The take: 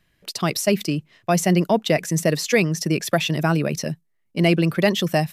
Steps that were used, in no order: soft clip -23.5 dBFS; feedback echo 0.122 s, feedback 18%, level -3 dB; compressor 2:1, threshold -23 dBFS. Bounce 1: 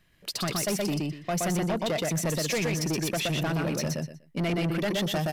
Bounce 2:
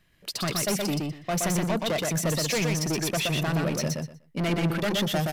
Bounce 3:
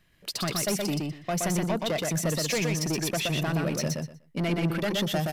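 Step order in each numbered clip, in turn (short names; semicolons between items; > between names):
compressor > feedback echo > soft clip; soft clip > compressor > feedback echo; compressor > soft clip > feedback echo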